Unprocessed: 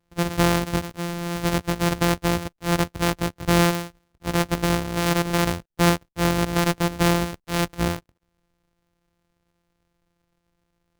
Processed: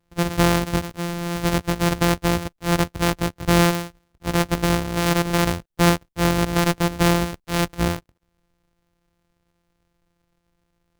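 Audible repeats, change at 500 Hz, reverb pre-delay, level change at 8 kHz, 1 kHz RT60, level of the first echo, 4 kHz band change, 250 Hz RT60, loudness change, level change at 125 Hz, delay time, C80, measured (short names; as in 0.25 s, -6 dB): none, +1.5 dB, none, +1.5 dB, none, none, +1.5 dB, none, +1.5 dB, +2.0 dB, none, none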